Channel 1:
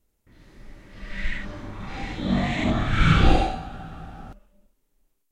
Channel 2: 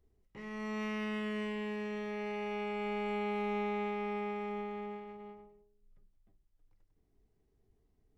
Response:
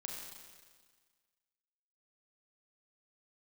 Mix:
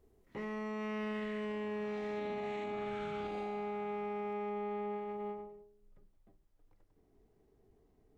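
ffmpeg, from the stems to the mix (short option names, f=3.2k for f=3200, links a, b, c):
-filter_complex "[0:a]highpass=f=290:p=1,acompressor=threshold=-30dB:ratio=3,volume=-9dB[a];[1:a]equalizer=f=550:w=0.36:g=9.5,alimiter=level_in=0.5dB:limit=-24dB:level=0:latency=1,volume=-0.5dB,volume=0.5dB[b];[a][b]amix=inputs=2:normalize=0,alimiter=level_in=8dB:limit=-24dB:level=0:latency=1:release=349,volume=-8dB"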